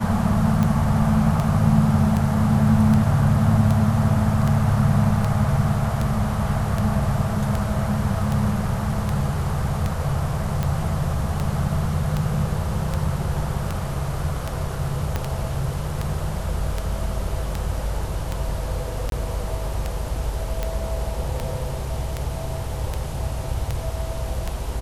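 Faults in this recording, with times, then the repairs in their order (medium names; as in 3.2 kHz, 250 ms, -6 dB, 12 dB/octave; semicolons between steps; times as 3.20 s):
tick 78 rpm -11 dBFS
15.16 s: pop -10 dBFS
19.10–19.12 s: dropout 22 ms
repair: de-click; interpolate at 19.10 s, 22 ms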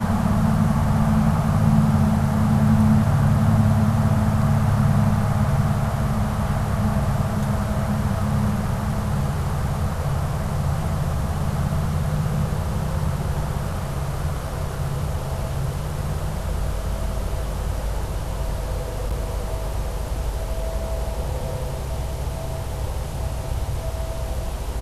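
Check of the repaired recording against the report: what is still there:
15.16 s: pop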